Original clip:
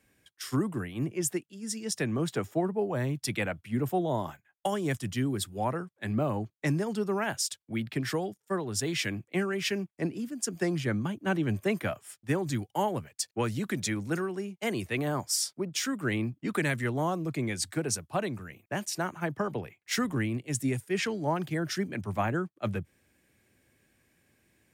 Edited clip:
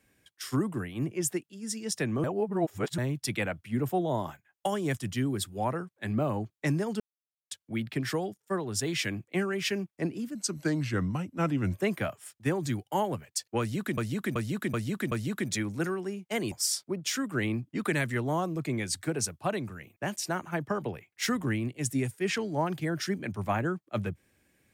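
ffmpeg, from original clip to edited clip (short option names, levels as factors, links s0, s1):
-filter_complex "[0:a]asplit=12[s0][s1][s2][s3][s4][s5][s6][s7][s8][s9][s10][s11];[s0]atrim=end=2.242[s12];[s1]atrim=start=2.238:end=2.982,asetpts=PTS-STARTPTS,areverse[s13];[s2]atrim=start=2.978:end=7,asetpts=PTS-STARTPTS,afade=t=out:st=4.018:d=0.004:c=hsin[s14];[s3]atrim=start=7:end=7.51,asetpts=PTS-STARTPTS,volume=0[s15];[s4]atrim=start=7.51:end=10.354,asetpts=PTS-STARTPTS,afade=t=in:d=0.004:c=hsin[s16];[s5]atrim=start=10.35:end=11.57,asetpts=PTS-STARTPTS,asetrate=38808,aresample=44100[s17];[s6]atrim=start=11.566:end=13.812[s18];[s7]atrim=start=13.428:end=13.812[s19];[s8]atrim=start=13.428:end=13.812[s20];[s9]atrim=start=13.428:end=13.812[s21];[s10]atrim=start=13.428:end=14.832[s22];[s11]atrim=start=15.208[s23];[s12][s13]acrossfade=d=0.004:c1=hsin:c2=hsin[s24];[s14][s15][s16]concat=n=3:v=0:a=1[s25];[s24][s25]acrossfade=d=0.004:c1=hsin:c2=hsin[s26];[s26][s17]acrossfade=d=0.004:c1=hsin:c2=hsin[s27];[s27][s18]acrossfade=d=0.004:c1=hsin:c2=hsin[s28];[s28][s19]acrossfade=d=0.004:c1=hsin:c2=hsin[s29];[s29][s20]acrossfade=d=0.004:c1=hsin:c2=hsin[s30];[s30][s21]acrossfade=d=0.004:c1=hsin:c2=hsin[s31];[s31][s22]acrossfade=d=0.004:c1=hsin:c2=hsin[s32];[s32][s23]acrossfade=d=0.004:c1=hsin:c2=hsin"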